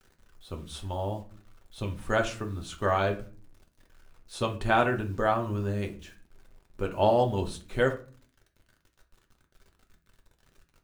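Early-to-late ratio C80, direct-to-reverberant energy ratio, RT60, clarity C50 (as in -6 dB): 17.5 dB, 2.5 dB, 0.40 s, 12.5 dB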